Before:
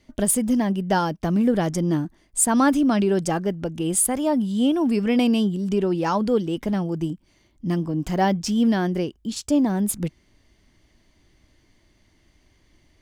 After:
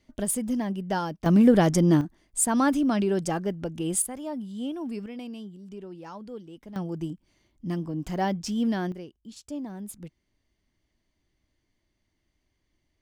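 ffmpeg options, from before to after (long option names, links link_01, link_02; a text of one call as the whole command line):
ffmpeg -i in.wav -af "asetnsamples=nb_out_samples=441:pad=0,asendcmd='1.26 volume volume 2.5dB;2.01 volume volume -4.5dB;4.02 volume volume -12.5dB;5.06 volume volume -19dB;6.76 volume volume -6.5dB;8.92 volume volume -15.5dB',volume=-7dB" out.wav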